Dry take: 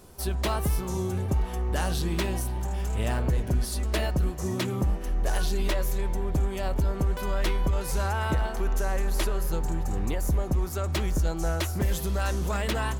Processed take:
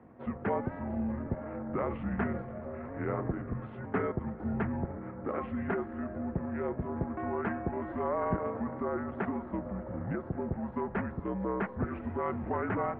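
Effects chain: mistuned SSB -82 Hz 210–2500 Hz; pitch shift -4.5 st

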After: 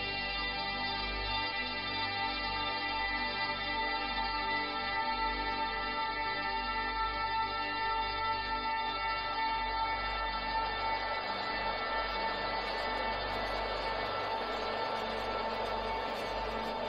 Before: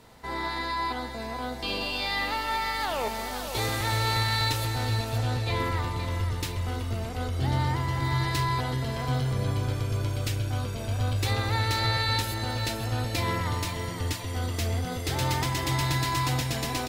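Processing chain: Paulstretch 16×, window 1.00 s, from 2.06; de-hum 71.14 Hz, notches 29; spectral gate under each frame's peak -25 dB strong; on a send: diffused feedback echo 0.97 s, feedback 48%, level -6.5 dB; on the sum: gain -6 dB

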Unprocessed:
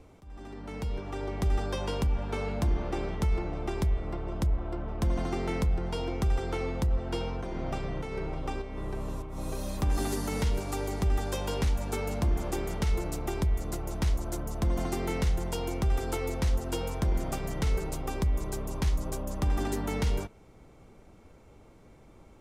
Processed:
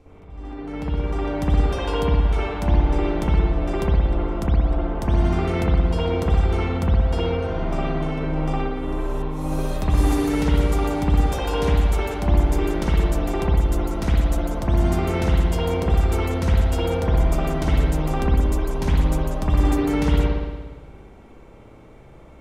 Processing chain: high shelf 5200 Hz -5.5 dB, from 0.96 s +2.5 dB; spring tank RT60 1.3 s, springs 58 ms, chirp 80 ms, DRR -9 dB

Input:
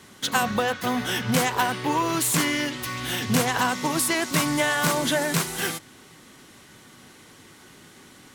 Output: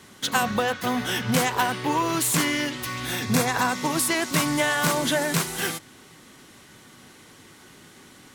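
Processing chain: 3.05–3.76 Butterworth band-stop 3000 Hz, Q 7.8

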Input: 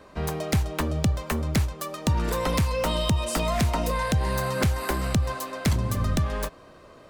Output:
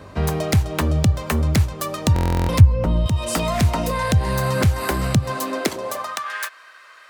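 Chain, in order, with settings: 2.6–3.06 tilt -4.5 dB/oct; hum 50 Hz, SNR 34 dB; compressor 2.5:1, threshold -26 dBFS, peak gain reduction 14.5 dB; high-pass sweep 88 Hz -> 1600 Hz, 5.06–6.35; stuck buffer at 2.14, samples 1024, times 14; gain +7 dB

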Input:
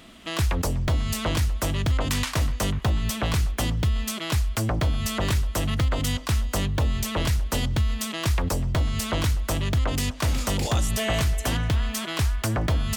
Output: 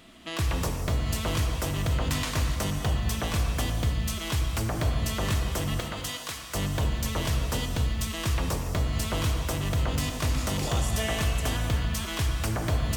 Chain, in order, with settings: 5.8–6.55 HPF 870 Hz 6 dB/oct; non-linear reverb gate 0.32 s flat, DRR 2.5 dB; gain -4.5 dB

